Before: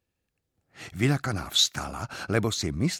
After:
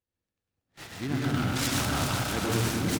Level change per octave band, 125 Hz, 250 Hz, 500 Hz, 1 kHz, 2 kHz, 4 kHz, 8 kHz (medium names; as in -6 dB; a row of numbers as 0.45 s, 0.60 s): -0.5 dB, +0.5 dB, -2.0 dB, +3.0 dB, +0.5 dB, -6.5 dB, -1.5 dB